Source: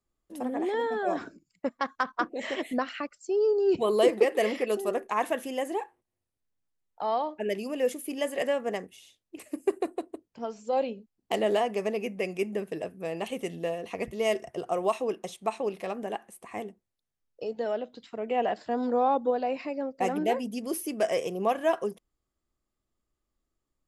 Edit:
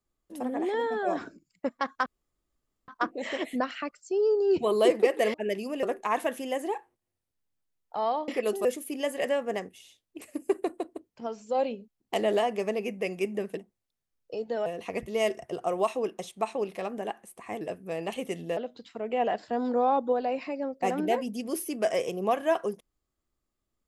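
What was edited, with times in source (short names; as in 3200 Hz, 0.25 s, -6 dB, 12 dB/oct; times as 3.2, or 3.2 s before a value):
2.06 insert room tone 0.82 s
4.52–4.89 swap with 7.34–7.83
12.75–13.71 swap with 16.66–17.75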